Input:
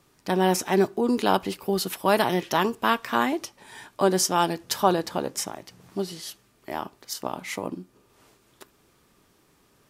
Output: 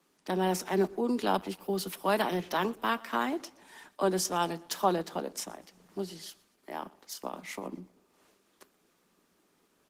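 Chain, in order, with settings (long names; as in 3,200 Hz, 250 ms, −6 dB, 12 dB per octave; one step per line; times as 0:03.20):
Butterworth high-pass 160 Hz 96 dB per octave
on a send: repeating echo 120 ms, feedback 40%, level −23 dB
on the sum: level −6 dB
Opus 16 kbit/s 48,000 Hz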